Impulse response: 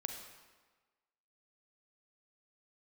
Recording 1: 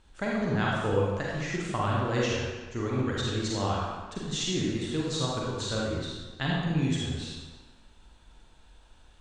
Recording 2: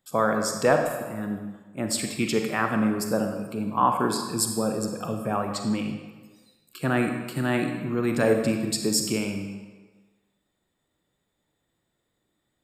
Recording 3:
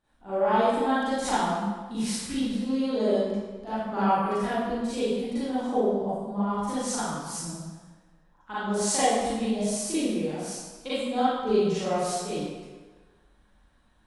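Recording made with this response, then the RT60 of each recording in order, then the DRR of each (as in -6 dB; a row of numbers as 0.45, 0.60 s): 2; 1.3, 1.3, 1.3 s; -4.5, 4.0, -13.0 dB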